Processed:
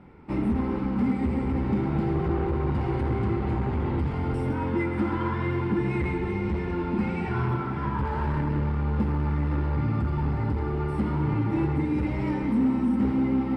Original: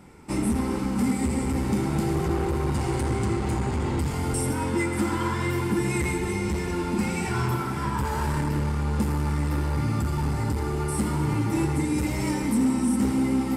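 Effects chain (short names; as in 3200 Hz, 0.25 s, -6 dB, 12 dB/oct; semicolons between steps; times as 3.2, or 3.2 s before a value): air absorption 390 m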